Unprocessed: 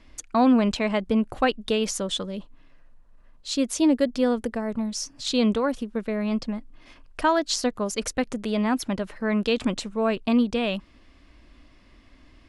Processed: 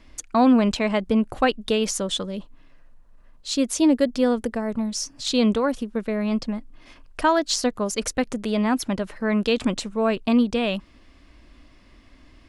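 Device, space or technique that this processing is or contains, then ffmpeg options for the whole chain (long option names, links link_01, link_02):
exciter from parts: -filter_complex "[0:a]asplit=2[link_01][link_02];[link_02]highpass=4200,asoftclip=type=tanh:threshold=-28dB,volume=-12.5dB[link_03];[link_01][link_03]amix=inputs=2:normalize=0,volume=2dB"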